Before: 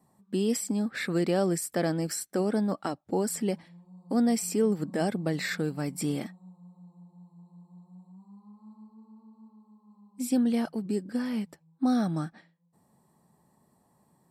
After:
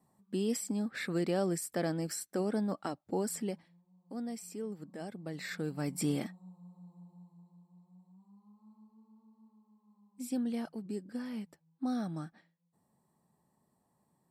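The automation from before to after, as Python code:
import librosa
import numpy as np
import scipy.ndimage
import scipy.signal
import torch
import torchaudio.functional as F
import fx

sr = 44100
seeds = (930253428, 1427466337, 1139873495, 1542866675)

y = fx.gain(x, sr, db=fx.line((3.37, -5.5), (3.84, -15.0), (5.12, -15.0), (5.93, -2.0), (7.12, -2.0), (7.66, -9.0)))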